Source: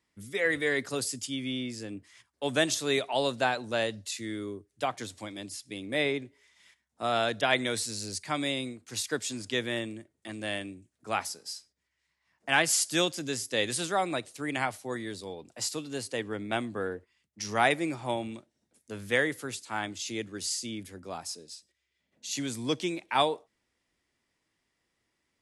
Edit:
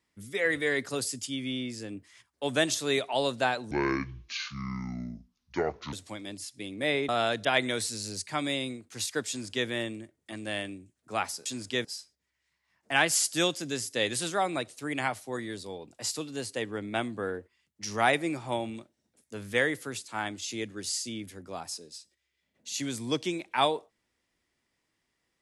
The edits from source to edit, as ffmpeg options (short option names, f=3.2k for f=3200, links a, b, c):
-filter_complex "[0:a]asplit=6[a][b][c][d][e][f];[a]atrim=end=3.714[g];[b]atrim=start=3.71:end=5.04,asetpts=PTS-STARTPTS,asetrate=26460,aresample=44100[h];[c]atrim=start=5.036:end=6.202[i];[d]atrim=start=7.048:end=11.422[j];[e]atrim=start=9.248:end=9.642[k];[f]atrim=start=11.418[l];[g][h]acrossfade=d=0.004:c1=hsin:c2=hsin[m];[m][i]acrossfade=d=0.004:c1=hsin:c2=hsin[n];[n][j]acrossfade=d=0.004:c1=hsin:c2=hsin[o];[o][k]acrossfade=d=0.004:c1=hsin:c2=hsin[p];[p][l]acrossfade=d=0.004:c1=hsin:c2=hsin"